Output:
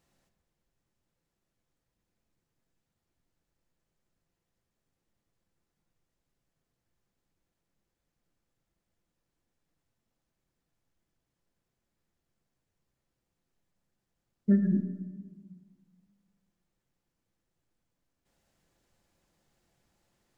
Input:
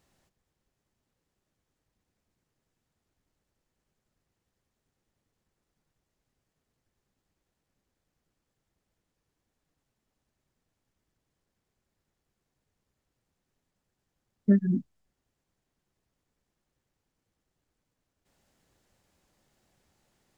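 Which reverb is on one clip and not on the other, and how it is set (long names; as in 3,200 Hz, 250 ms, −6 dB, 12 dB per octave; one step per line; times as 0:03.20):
rectangular room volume 970 cubic metres, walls mixed, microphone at 0.79 metres
level −4 dB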